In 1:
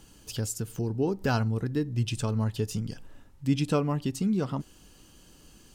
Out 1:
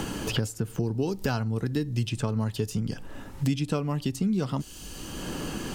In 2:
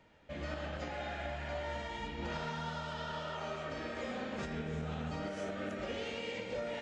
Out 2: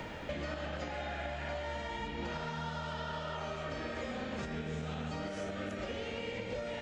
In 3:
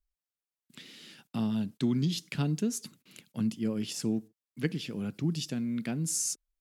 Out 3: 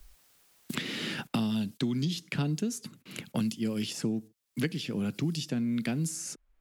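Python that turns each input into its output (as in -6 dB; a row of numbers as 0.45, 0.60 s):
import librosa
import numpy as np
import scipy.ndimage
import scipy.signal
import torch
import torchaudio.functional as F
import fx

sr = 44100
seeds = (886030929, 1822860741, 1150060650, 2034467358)

y = fx.band_squash(x, sr, depth_pct=100)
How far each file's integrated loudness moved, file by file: 0.0, +1.0, -0.5 LU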